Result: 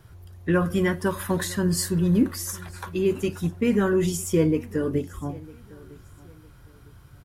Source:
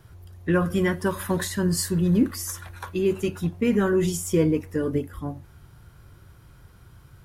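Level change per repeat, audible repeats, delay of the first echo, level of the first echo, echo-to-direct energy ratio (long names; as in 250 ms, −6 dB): −10.0 dB, 2, 955 ms, −22.0 dB, −21.5 dB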